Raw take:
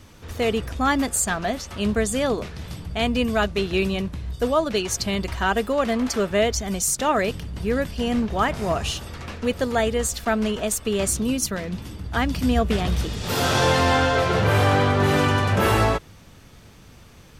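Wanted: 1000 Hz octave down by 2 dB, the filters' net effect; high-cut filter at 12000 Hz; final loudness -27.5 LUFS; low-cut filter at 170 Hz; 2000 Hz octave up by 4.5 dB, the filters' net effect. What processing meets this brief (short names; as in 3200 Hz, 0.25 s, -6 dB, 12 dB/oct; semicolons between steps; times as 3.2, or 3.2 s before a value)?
HPF 170 Hz; LPF 12000 Hz; bell 1000 Hz -5 dB; bell 2000 Hz +7.5 dB; gain -5 dB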